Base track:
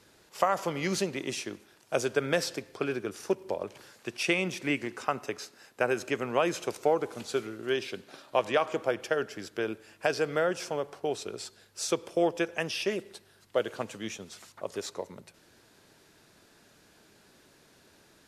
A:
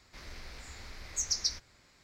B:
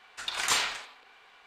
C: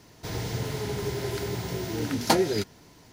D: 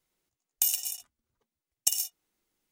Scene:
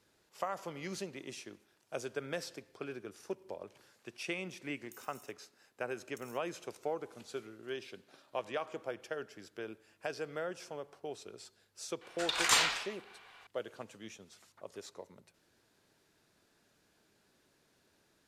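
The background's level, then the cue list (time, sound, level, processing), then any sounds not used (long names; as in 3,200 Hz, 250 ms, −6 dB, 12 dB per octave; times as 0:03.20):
base track −11.5 dB
0:04.30: mix in D −16.5 dB + downward compressor 5 to 1, threshold −38 dBFS
0:12.01: mix in B −0.5 dB
not used: A, C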